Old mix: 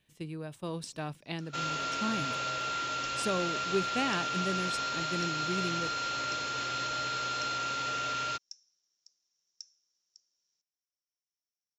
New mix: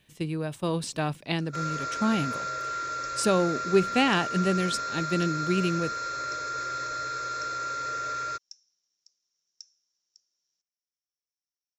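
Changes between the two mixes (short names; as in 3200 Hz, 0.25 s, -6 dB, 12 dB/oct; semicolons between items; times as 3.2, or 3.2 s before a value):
speech +9.0 dB; second sound: add fixed phaser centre 810 Hz, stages 6; reverb: on, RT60 0.45 s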